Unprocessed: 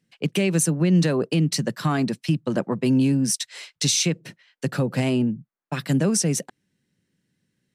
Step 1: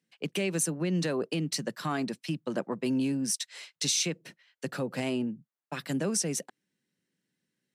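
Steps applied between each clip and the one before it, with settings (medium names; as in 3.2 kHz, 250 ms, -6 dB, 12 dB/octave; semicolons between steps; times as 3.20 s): Bessel high-pass 250 Hz, order 2; trim -6 dB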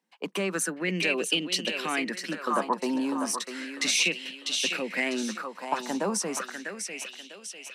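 elliptic high-pass 190 Hz, stop band 50 dB; thinning echo 648 ms, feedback 54%, high-pass 410 Hz, level -6 dB; sweeping bell 0.34 Hz 890–3100 Hz +17 dB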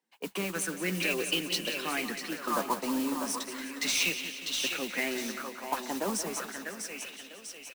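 modulation noise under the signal 11 dB; flange 0.84 Hz, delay 2.1 ms, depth 5.5 ms, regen -47%; on a send: feedback delay 179 ms, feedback 57%, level -11.5 dB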